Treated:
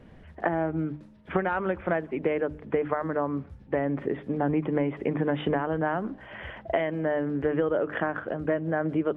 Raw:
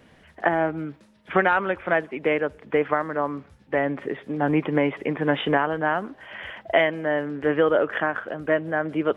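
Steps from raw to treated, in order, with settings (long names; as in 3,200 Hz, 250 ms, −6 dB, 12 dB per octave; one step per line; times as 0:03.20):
spectral tilt −3 dB per octave
mains-hum notches 50/100/150/200/250/300 Hz
downward compressor, threshold −20 dBFS, peak gain reduction 9 dB
level −2 dB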